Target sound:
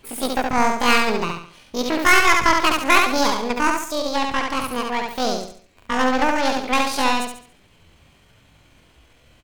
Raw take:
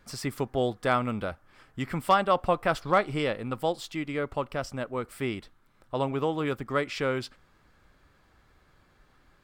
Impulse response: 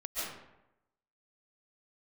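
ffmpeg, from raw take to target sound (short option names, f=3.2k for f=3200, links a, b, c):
-af "aeval=exprs='0.282*(cos(1*acos(clip(val(0)/0.282,-1,1)))-cos(1*PI/2))+0.00447*(cos(2*acos(clip(val(0)/0.282,-1,1)))-cos(2*PI/2))+0.002*(cos(4*acos(clip(val(0)/0.282,-1,1)))-cos(4*PI/2))+0.00178*(cos(5*acos(clip(val(0)/0.282,-1,1)))-cos(5*PI/2))+0.0501*(cos(6*acos(clip(val(0)/0.282,-1,1)))-cos(6*PI/2))':c=same,asetrate=83250,aresample=44100,atempo=0.529732,aecho=1:1:70|140|210|280|350:0.668|0.254|0.0965|0.0367|0.0139,volume=6dB"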